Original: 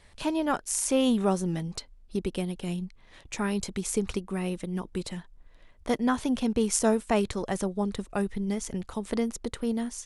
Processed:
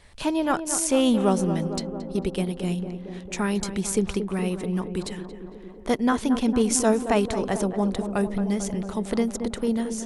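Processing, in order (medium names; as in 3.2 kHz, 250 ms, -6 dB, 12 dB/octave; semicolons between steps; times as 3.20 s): tape echo 225 ms, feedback 84%, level -8 dB, low-pass 1.3 kHz; trim +3.5 dB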